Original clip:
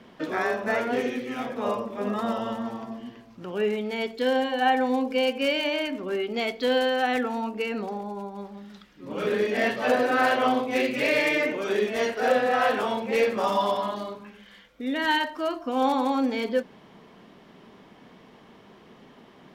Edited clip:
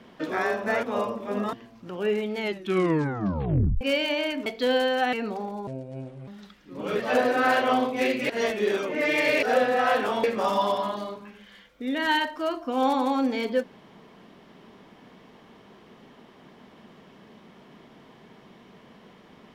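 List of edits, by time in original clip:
0:00.83–0:01.53: remove
0:02.23–0:03.08: remove
0:03.93: tape stop 1.43 s
0:06.01–0:06.47: remove
0:07.14–0:07.65: remove
0:08.19–0:08.59: play speed 66%
0:09.31–0:09.74: remove
0:11.04–0:12.17: reverse
0:12.98–0:13.23: remove

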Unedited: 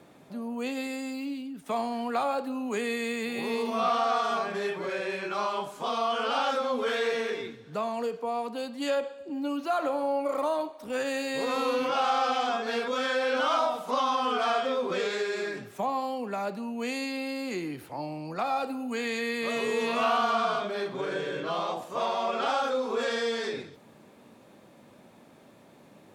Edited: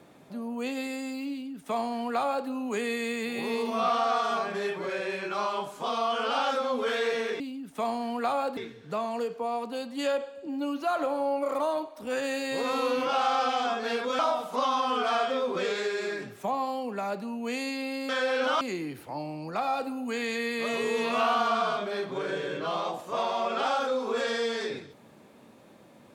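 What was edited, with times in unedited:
0:01.31–0:02.48: duplicate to 0:07.40
0:13.02–0:13.54: move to 0:17.44

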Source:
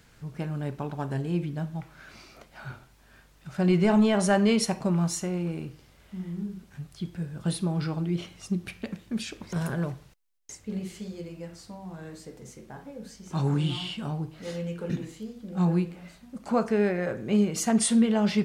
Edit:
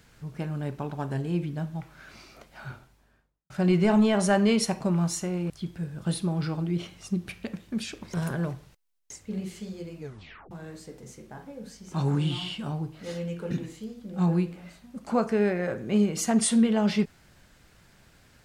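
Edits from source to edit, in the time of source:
0:02.66–0:03.50: fade out and dull
0:05.50–0:06.89: remove
0:11.37: tape stop 0.53 s

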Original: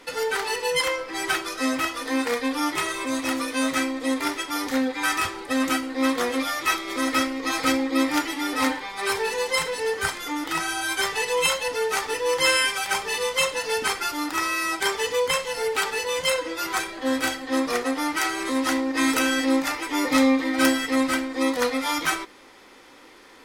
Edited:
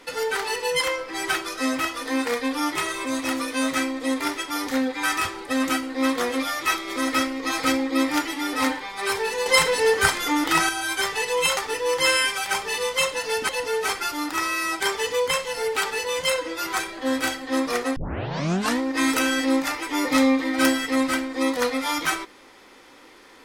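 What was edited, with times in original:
0:09.46–0:10.69: clip gain +6.5 dB
0:11.57–0:11.97: move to 0:13.89
0:17.96: tape start 0.84 s

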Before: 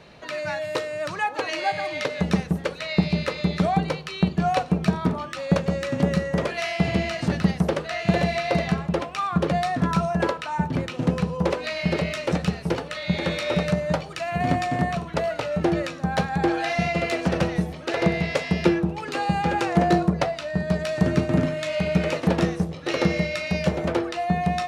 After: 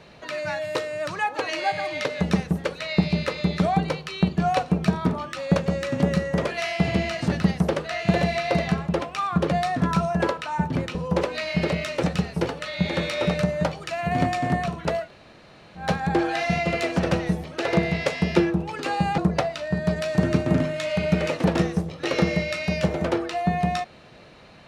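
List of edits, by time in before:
0:10.95–0:11.24: remove
0:15.32–0:16.12: fill with room tone, crossfade 0.16 s
0:19.47–0:20.01: remove

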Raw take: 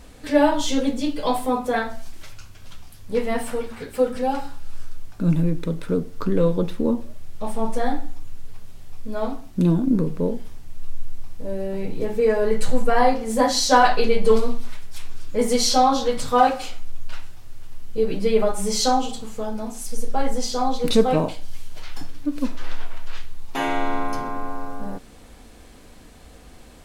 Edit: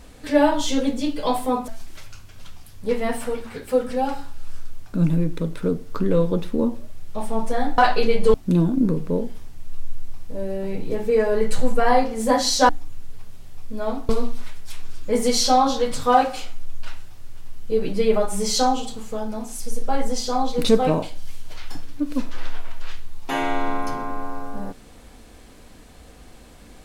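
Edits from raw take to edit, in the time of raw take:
0:01.68–0:01.94: remove
0:08.04–0:09.44: swap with 0:13.79–0:14.35

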